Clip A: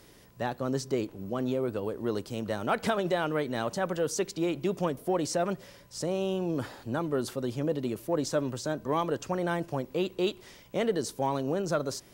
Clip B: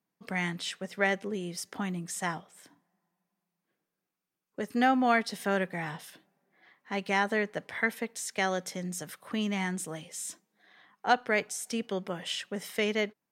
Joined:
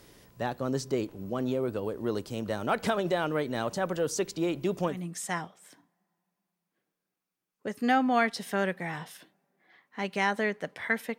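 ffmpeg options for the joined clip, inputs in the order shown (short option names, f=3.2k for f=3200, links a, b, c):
-filter_complex "[0:a]apad=whole_dur=11.18,atrim=end=11.18,atrim=end=5.04,asetpts=PTS-STARTPTS[a];[1:a]atrim=start=1.79:end=8.11,asetpts=PTS-STARTPTS[b];[a][b]acrossfade=d=0.18:c1=tri:c2=tri"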